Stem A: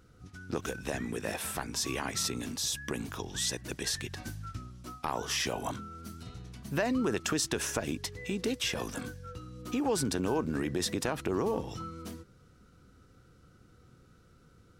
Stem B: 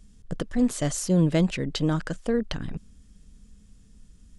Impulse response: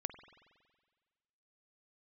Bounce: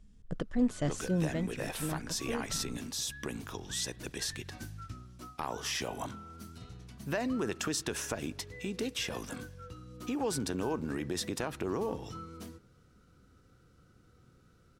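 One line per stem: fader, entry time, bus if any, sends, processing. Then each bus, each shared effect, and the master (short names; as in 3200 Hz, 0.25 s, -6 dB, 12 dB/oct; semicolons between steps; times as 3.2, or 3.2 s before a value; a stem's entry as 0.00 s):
-17.0 dB, 0.35 s, send -8.5 dB, AGC gain up to 11.5 dB
1 s -5.5 dB -> 1.3 s -12.5 dB, 0.00 s, no send, high shelf 5700 Hz -12 dB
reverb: on, RT60 1.6 s, pre-delay 46 ms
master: dry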